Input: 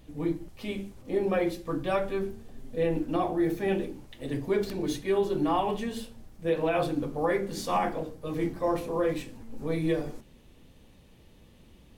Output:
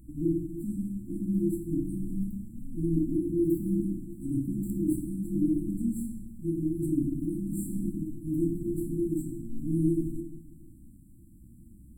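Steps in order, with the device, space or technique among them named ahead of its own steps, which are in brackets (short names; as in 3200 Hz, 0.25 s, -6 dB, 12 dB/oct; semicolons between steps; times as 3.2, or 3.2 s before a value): bathroom (reverb RT60 1.1 s, pre-delay 6 ms, DRR 3.5 dB); FFT band-reject 350–7300 Hz; gain +2 dB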